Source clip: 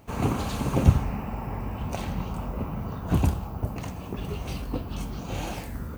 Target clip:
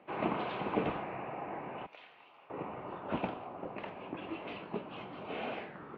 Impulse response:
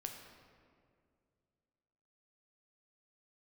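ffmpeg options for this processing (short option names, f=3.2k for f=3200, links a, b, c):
-filter_complex "[0:a]asettb=1/sr,asplit=3[a][b][c];[a]atrim=end=1.864[d];[b]atrim=start=1.86:end=2.5,asetpts=PTS-STARTPTS,afade=t=in:d=0.004:c=qsin,afade=t=out:st=0.636:d=0.004:c=qsin,aderivative[e];[c]atrim=start=2.496[f];[d][e]acrossfade=d=0.004:c1=hsin:c2=qsin[g];[g][f]acrossfade=d=0.004:c1=qsin:c2=hsin,highpass=f=330:t=q:w=0.5412,highpass=f=330:t=q:w=1.307,lowpass=f=3.2k:t=q:w=0.5176,lowpass=f=3.2k:t=q:w=0.7071,lowpass=f=3.2k:t=q:w=1.932,afreqshift=-85,volume=-2dB"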